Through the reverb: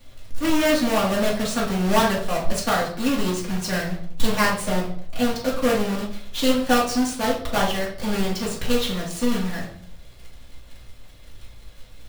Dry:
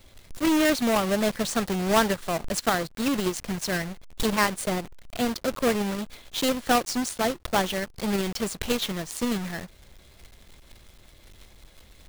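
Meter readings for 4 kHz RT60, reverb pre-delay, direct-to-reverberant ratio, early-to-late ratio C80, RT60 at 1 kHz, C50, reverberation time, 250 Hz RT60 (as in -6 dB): 0.45 s, 3 ms, -5.5 dB, 11.5 dB, 0.55 s, 6.5 dB, 0.60 s, 0.80 s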